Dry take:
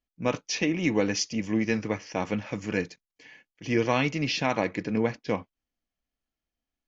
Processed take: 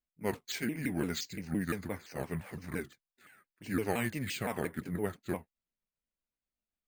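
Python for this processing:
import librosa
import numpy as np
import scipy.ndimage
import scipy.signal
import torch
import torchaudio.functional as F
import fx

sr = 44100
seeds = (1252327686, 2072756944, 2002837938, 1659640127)

y = fx.pitch_ramps(x, sr, semitones=-6.0, every_ms=172)
y = np.repeat(scipy.signal.resample_poly(y, 1, 4), 4)[:len(y)]
y = fx.vibrato(y, sr, rate_hz=1.7, depth_cents=52.0)
y = y * librosa.db_to_amplitude(-7.0)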